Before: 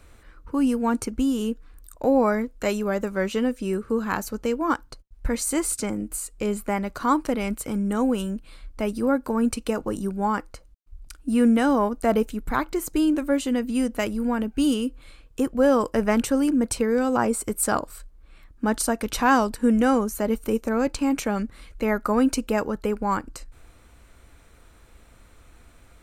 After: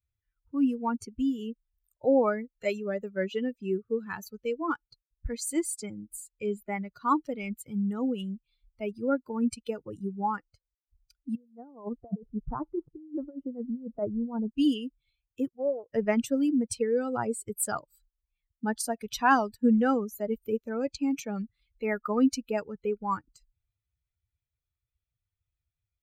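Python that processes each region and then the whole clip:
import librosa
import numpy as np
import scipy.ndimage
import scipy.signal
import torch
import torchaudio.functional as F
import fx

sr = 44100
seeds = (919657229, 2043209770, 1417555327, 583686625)

y = fx.chain(x, sr, fx.lowpass(hz=1200.0, slope=24),
    fx.over_compress(threshold_db=-25.0, ratio=-0.5), at=(11.35, 14.5))
y = fx.chain(y, sr, fx.ladder_lowpass(hz=840.0, resonance_pct=60),
    fx.doppler_dist(depth_ms=0.22), at=(15.48, 15.9))
y = fx.bin_expand(y, sr, power=2.0)
y = fx.highpass(y, sr, hz=73.0, slope=6)
y = fx.high_shelf(y, sr, hz=5900.0, db=-4.0)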